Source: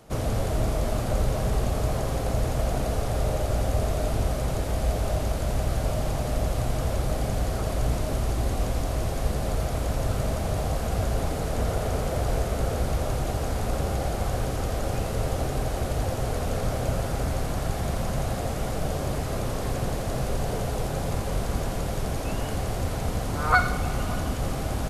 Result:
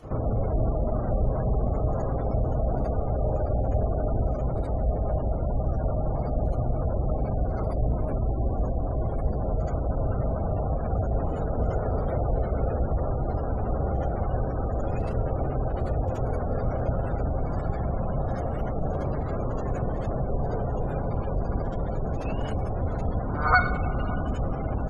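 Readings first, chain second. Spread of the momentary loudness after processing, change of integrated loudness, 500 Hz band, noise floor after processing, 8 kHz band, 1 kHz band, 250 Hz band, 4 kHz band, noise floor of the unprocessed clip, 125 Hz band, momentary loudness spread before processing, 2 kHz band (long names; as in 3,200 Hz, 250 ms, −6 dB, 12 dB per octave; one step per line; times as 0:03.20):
3 LU, −0.5 dB, 0.0 dB, −30 dBFS, below −25 dB, −0.5 dB, 0.0 dB, below −15 dB, −30 dBFS, 0.0 dB, 3 LU, −1.5 dB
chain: gate on every frequency bin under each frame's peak −25 dB strong
backwards echo 75 ms −12 dB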